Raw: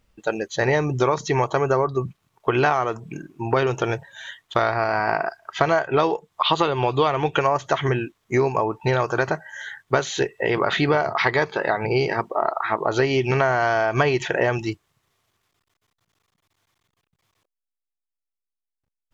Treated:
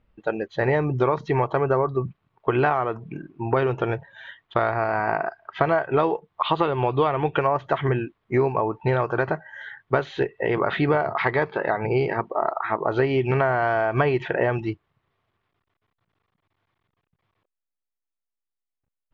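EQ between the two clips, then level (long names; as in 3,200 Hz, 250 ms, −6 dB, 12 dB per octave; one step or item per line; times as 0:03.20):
high-frequency loss of the air 390 metres
0.0 dB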